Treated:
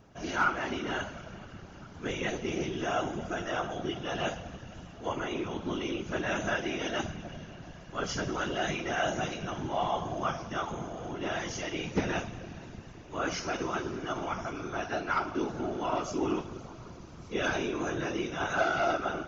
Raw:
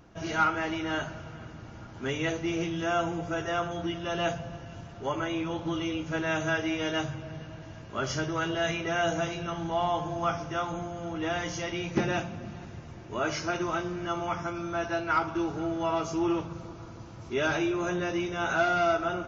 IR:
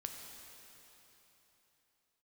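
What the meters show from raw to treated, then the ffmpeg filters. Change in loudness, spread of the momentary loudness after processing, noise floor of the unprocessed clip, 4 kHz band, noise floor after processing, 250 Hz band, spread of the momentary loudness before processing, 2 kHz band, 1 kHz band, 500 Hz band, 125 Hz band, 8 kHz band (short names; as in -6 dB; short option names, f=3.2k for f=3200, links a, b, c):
-2.5 dB, 15 LU, -45 dBFS, -1.5 dB, -48 dBFS, -3.5 dB, 15 LU, -2.0 dB, -2.5 dB, -2.5 dB, -3.5 dB, n/a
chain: -filter_complex "[0:a]asplit=2[a][b];[1:a]atrim=start_sample=2205,highshelf=f=2.2k:g=11.5[c];[b][c]afir=irnorm=-1:irlink=0,volume=-13dB[d];[a][d]amix=inputs=2:normalize=0,afftfilt=real='hypot(re,im)*cos(2*PI*random(0))':imag='hypot(re,im)*sin(2*PI*random(1))':win_size=512:overlap=0.75,volume=2dB"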